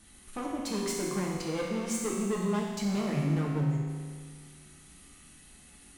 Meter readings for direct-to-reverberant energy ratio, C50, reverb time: -4.0 dB, -0.5 dB, 1.9 s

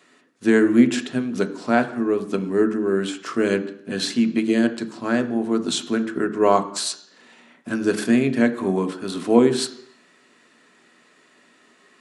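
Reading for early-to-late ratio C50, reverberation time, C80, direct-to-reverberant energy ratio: 13.0 dB, 0.70 s, 16.0 dB, 7.0 dB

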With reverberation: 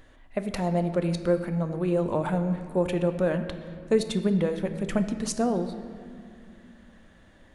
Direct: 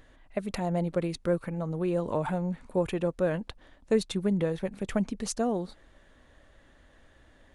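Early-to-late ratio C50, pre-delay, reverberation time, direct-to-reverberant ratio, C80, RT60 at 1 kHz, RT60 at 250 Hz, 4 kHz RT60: 9.5 dB, 4 ms, 2.3 s, 8.0 dB, 11.0 dB, 2.1 s, 3.4 s, 1.5 s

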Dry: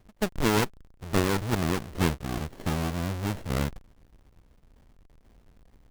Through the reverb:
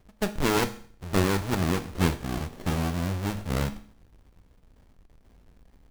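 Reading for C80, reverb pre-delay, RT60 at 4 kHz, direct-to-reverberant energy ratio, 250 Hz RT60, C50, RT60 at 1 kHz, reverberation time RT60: 18.5 dB, 8 ms, 0.50 s, 9.0 dB, 0.50 s, 15.0 dB, 0.50 s, 0.50 s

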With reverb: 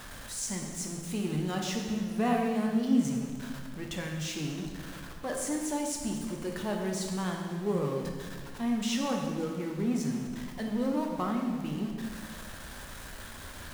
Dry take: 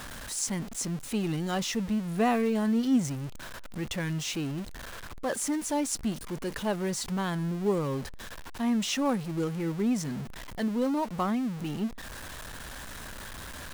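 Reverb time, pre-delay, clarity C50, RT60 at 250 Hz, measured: 1.7 s, 8 ms, 3.5 dB, 2.1 s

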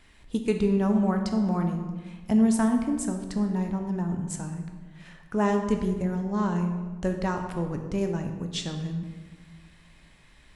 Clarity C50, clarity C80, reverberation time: 6.5 dB, 8.0 dB, 1.4 s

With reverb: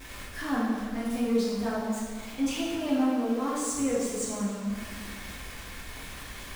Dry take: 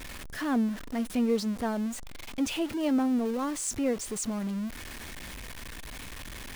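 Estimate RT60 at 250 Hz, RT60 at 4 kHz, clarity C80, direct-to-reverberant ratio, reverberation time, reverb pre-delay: 1.7 s, 1.3 s, 1.0 dB, -8.5 dB, 1.7 s, 4 ms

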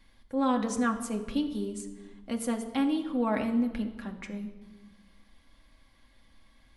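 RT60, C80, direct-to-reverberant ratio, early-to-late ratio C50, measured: 1.3 s, 12.0 dB, 2.0 dB, 10.5 dB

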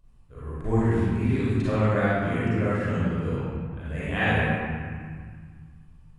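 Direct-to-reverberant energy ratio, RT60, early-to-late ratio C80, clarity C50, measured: -11.0 dB, 1.8 s, -2.5 dB, -6.5 dB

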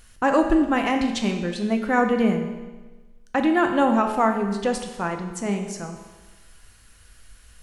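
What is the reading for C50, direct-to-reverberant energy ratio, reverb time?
6.5 dB, 4.0 dB, 1.3 s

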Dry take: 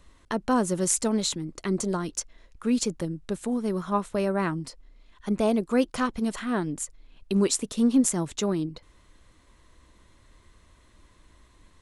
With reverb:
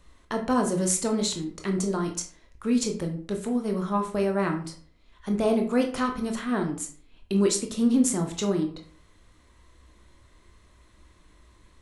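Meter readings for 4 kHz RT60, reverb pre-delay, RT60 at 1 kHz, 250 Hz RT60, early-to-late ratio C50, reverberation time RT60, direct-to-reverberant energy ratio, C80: 0.30 s, 16 ms, 0.50 s, 0.50 s, 9.5 dB, 0.45 s, 3.0 dB, 13.5 dB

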